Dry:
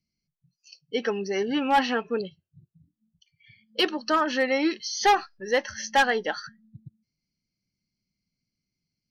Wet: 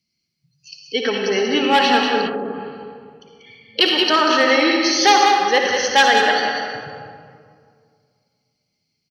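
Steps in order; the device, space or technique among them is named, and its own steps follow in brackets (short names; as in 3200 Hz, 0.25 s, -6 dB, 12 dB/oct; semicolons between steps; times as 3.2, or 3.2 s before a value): PA in a hall (HPF 140 Hz 6 dB/oct; bell 3700 Hz +7.5 dB 1.5 oct; echo 0.189 s -6.5 dB; reverb RT60 2.1 s, pre-delay 53 ms, DRR 1 dB); 2.26–3.81 treble ducked by the level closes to 1000 Hz, closed at -24.5 dBFS; gain +4.5 dB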